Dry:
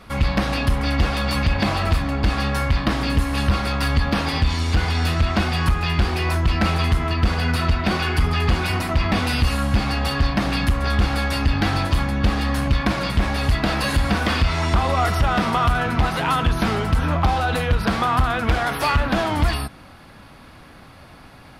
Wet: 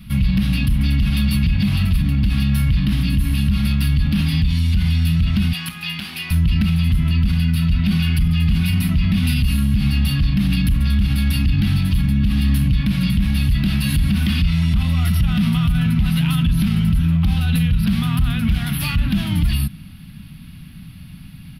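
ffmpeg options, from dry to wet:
-filter_complex "[0:a]asettb=1/sr,asplit=3[a][b][c];[a]atrim=end=5.534[d];[b]atrim=start=5.53:end=6.31,asetpts=PTS-STARTPTS,afade=t=in:d=0.004:c=qsin,afade=t=out:st=0.776:d=0.004:c=qsin,highpass=500[e];[c]atrim=start=6.306[f];[d][e]acrossfade=d=0.004:c1=hsin:c2=qsin[g];[g][f]acrossfade=d=0.004:c1=qsin:c2=hsin,firequalizer=gain_entry='entry(110,0);entry(170,8);entry(400,-29);entry(2800,-4);entry(7100,-17);entry(11000,2)':delay=0.05:min_phase=1,alimiter=limit=-18dB:level=0:latency=1:release=30,volume=8dB"

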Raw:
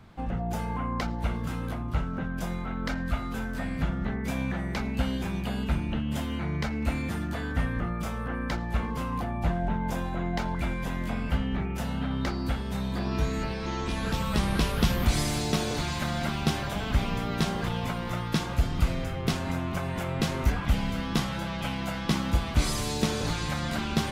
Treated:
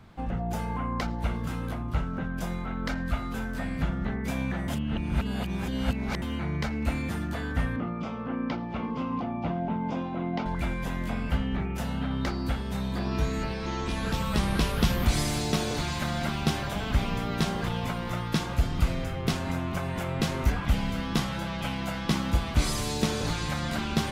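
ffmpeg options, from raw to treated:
-filter_complex "[0:a]asettb=1/sr,asplit=3[a][b][c];[a]atrim=end=7.764[d];[b]atrim=start=7.76:end=10.46,asetpts=PTS-STARTPTS,afade=t=in:d=0.004:c=qsin,afade=t=out:st=2.696:d=0.004:c=qsin,highpass=140,equalizer=f=260:t=q:w=4:g=7,equalizer=f=1.7k:t=q:w=4:g=-10,equalizer=f=4k:t=q:w=4:g=-6,lowpass=f=4.6k:w=0.5412,lowpass=f=4.6k:w=1.3066[e];[c]atrim=start=10.456[f];[d][e]acrossfade=d=0.004:c1=hsin:c2=qsin[g];[g][f]acrossfade=d=0.004:c1=qsin:c2=hsin,asplit=3[h][i][j];[h]atrim=end=4.682[k];[i]atrim=start=4.678:end=6.222,asetpts=PTS-STARTPTS,areverse[l];[j]atrim=start=6.218[m];[k][l]acrossfade=d=0.004:c1=hsin:c2=hsin[n];[n][m]acrossfade=d=0.004:c1=hsin:c2=hsin"

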